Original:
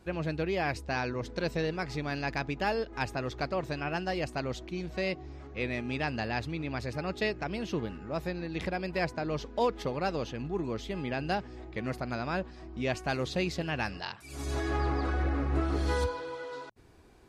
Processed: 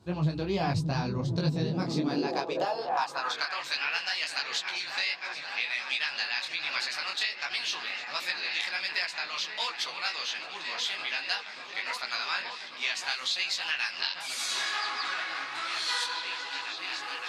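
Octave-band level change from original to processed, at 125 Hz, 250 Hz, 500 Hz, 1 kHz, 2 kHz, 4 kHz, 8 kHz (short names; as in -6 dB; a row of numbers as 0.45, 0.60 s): -1.0, -2.0, -5.5, +1.0, +6.0, +12.5, +10.0 dB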